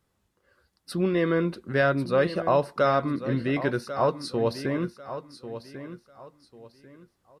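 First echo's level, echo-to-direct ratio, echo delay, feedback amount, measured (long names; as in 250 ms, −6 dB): −12.0 dB, −11.5 dB, 1,094 ms, 28%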